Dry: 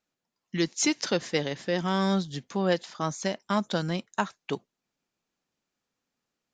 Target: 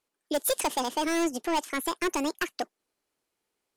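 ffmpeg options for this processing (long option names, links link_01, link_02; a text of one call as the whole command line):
ffmpeg -i in.wav -af "asetrate=76440,aresample=44100,asoftclip=type=hard:threshold=-23.5dB,volume=2dB" out.wav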